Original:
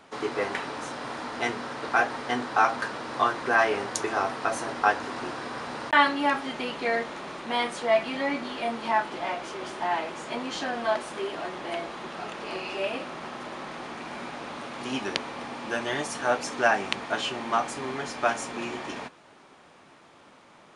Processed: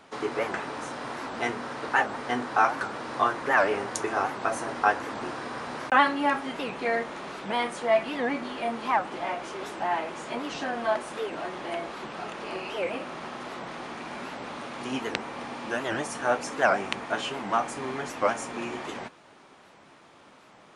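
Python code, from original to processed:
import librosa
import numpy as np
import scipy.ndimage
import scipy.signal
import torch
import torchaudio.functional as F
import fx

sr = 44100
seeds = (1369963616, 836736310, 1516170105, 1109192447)

y = fx.dynamic_eq(x, sr, hz=4200.0, q=1.1, threshold_db=-45.0, ratio=4.0, max_db=-5)
y = fx.record_warp(y, sr, rpm=78.0, depth_cents=250.0)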